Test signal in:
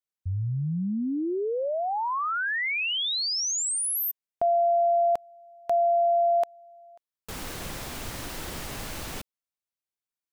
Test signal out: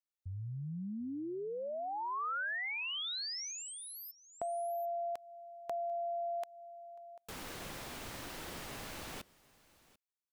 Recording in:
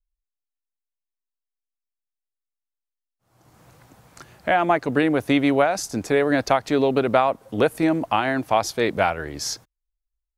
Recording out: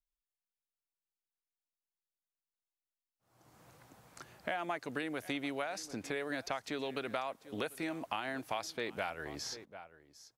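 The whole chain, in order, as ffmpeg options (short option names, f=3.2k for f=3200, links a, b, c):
-filter_complex "[0:a]lowshelf=f=120:g=-8,aecho=1:1:742:0.075,acrossover=split=1400|4400[a][b][c];[a]acompressor=threshold=-32dB:ratio=4[d];[b]acompressor=threshold=-34dB:ratio=4[e];[c]acompressor=threshold=-43dB:ratio=4[f];[d][e][f]amix=inputs=3:normalize=0,volume=-7dB"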